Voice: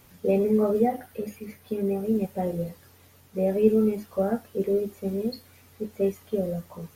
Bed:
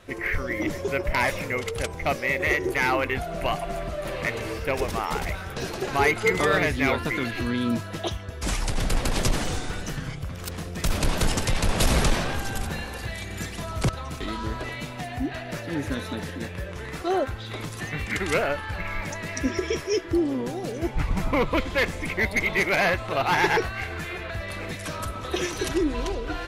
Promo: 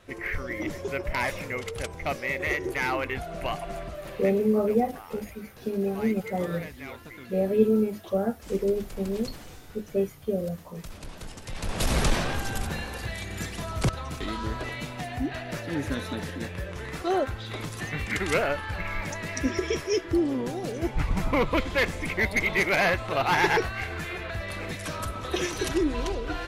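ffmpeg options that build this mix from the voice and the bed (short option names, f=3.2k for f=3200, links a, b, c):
-filter_complex "[0:a]adelay=3950,volume=-1dB[a];[1:a]volume=12dB,afade=t=out:st=3.77:d=0.71:silence=0.223872,afade=t=in:st=11.42:d=0.73:silence=0.149624[b];[a][b]amix=inputs=2:normalize=0"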